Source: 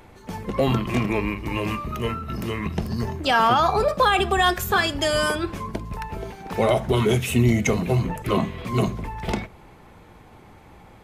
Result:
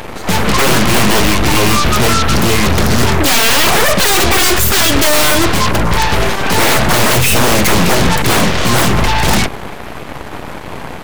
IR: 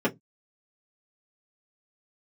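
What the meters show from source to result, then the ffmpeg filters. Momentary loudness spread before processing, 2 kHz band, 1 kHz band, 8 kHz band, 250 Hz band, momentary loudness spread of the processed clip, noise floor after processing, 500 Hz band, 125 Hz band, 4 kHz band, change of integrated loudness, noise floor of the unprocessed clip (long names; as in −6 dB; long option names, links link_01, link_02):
13 LU, +13.5 dB, +9.0 dB, +22.0 dB, +10.0 dB, 18 LU, −26 dBFS, +8.5 dB, +9.5 dB, +16.0 dB, +12.0 dB, −48 dBFS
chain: -af "aeval=exprs='0.422*sin(PI/2*5.62*val(0)/0.422)':channel_layout=same,aeval=exprs='0.447*(cos(1*acos(clip(val(0)/0.447,-1,1)))-cos(1*PI/2))+0.0891*(cos(7*acos(clip(val(0)/0.447,-1,1)))-cos(7*PI/2))+0.2*(cos(8*acos(clip(val(0)/0.447,-1,1)))-cos(8*PI/2))':channel_layout=same,volume=-1dB"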